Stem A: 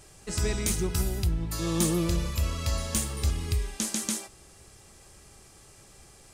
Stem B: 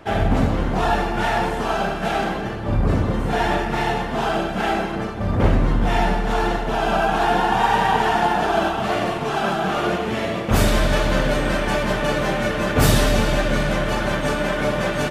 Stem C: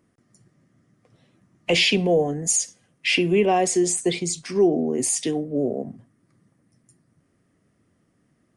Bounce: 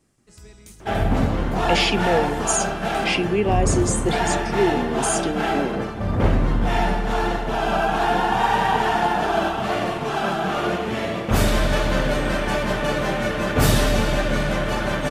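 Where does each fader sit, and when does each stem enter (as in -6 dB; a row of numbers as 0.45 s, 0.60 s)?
-17.5 dB, -1.5 dB, -2.0 dB; 0.00 s, 0.80 s, 0.00 s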